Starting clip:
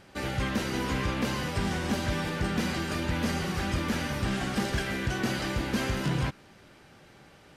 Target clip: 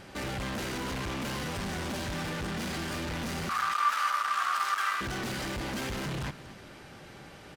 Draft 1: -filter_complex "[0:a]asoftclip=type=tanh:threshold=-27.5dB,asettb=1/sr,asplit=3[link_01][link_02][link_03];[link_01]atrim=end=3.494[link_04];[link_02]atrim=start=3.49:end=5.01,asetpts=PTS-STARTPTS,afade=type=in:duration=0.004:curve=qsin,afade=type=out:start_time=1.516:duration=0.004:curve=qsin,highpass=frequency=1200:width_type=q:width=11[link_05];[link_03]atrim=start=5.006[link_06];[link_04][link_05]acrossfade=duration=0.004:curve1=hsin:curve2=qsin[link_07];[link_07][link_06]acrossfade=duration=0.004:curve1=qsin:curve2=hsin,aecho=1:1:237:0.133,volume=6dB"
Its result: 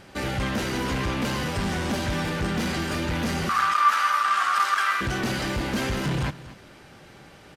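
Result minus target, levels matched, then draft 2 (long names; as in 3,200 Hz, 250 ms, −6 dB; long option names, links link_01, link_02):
soft clipping: distortion −8 dB
-filter_complex "[0:a]asoftclip=type=tanh:threshold=-39dB,asettb=1/sr,asplit=3[link_01][link_02][link_03];[link_01]atrim=end=3.494[link_04];[link_02]atrim=start=3.49:end=5.01,asetpts=PTS-STARTPTS,afade=type=in:duration=0.004:curve=qsin,afade=type=out:start_time=1.516:duration=0.004:curve=qsin,highpass=frequency=1200:width_type=q:width=11[link_05];[link_03]atrim=start=5.006[link_06];[link_04][link_05]acrossfade=duration=0.004:curve1=hsin:curve2=qsin[link_07];[link_07][link_06]acrossfade=duration=0.004:curve1=qsin:curve2=hsin,aecho=1:1:237:0.133,volume=6dB"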